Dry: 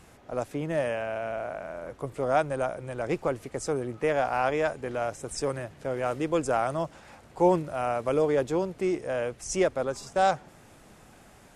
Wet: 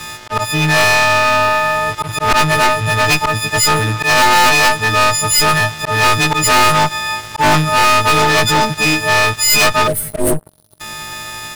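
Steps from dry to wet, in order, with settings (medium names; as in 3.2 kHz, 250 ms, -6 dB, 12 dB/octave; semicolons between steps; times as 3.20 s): partials quantised in pitch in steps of 6 st; slow attack 110 ms; graphic EQ 125/250/500/1000/2000/4000/8000 Hz +8/-6/-11/+9/+3/+9/-8 dB; Chebyshev shaper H 5 -22 dB, 6 -9 dB, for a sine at -6 dBFS; spectral selection erased 9.87–10.80 s, 670–8200 Hz; waveshaping leveller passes 5; trim -2.5 dB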